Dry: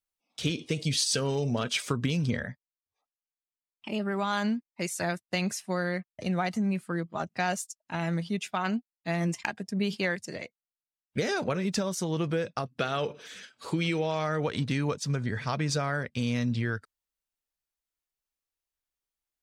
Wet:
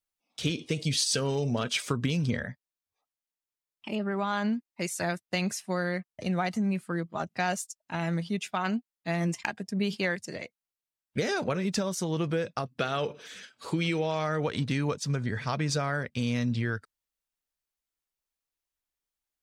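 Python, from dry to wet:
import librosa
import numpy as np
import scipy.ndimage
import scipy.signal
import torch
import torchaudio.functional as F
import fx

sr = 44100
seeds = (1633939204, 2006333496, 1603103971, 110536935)

y = fx.lowpass(x, sr, hz=2800.0, slope=6, at=(3.95, 4.53))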